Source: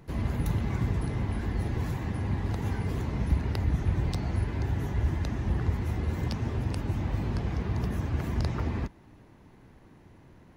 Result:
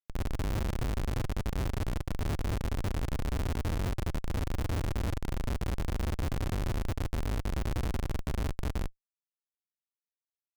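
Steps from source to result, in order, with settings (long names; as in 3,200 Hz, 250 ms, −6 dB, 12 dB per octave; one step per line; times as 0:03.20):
all-pass phaser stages 8, 0.67 Hz, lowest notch 520–4,900 Hz
spring reverb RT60 1 s, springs 36/40 ms, chirp 20 ms, DRR 6 dB
comparator with hysteresis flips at −24 dBFS
level −2.5 dB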